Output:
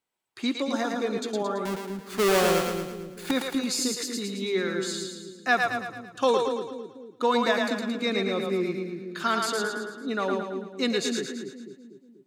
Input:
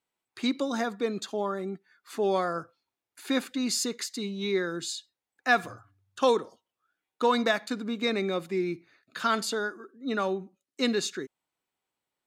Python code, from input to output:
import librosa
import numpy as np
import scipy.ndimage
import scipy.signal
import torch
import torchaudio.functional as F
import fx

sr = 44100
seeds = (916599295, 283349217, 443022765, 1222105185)

p1 = fx.halfwave_hold(x, sr, at=(1.65, 3.31))
y = p1 + fx.echo_split(p1, sr, split_hz=400.0, low_ms=243, high_ms=111, feedback_pct=52, wet_db=-3.5, dry=0)